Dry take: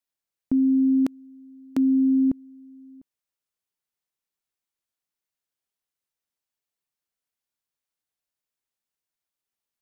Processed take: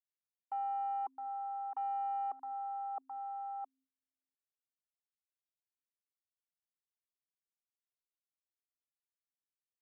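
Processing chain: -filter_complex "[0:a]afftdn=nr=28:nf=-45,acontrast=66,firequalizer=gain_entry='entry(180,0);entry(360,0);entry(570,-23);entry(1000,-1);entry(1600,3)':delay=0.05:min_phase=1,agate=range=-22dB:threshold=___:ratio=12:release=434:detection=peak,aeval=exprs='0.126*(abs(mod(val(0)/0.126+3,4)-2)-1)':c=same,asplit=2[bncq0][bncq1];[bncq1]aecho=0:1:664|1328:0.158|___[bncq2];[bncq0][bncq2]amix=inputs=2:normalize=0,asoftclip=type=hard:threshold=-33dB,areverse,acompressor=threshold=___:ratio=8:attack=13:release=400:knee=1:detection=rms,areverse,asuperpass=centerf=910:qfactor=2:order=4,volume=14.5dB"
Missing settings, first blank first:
-27dB, 0.0333, -51dB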